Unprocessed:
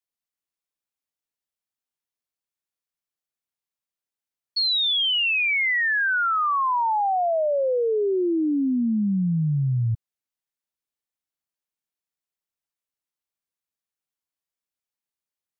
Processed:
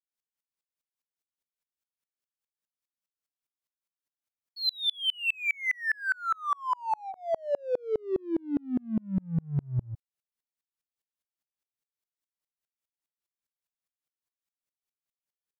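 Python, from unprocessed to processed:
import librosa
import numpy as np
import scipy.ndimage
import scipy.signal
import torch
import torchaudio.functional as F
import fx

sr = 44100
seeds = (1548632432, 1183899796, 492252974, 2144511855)

p1 = fx.notch(x, sr, hz=760.0, q=12.0)
p2 = 10.0 ** (-35.5 / 20.0) * np.tanh(p1 / 10.0 ** (-35.5 / 20.0))
p3 = p1 + (p2 * librosa.db_to_amplitude(-5.5))
y = fx.tremolo_decay(p3, sr, direction='swelling', hz=4.9, depth_db=37)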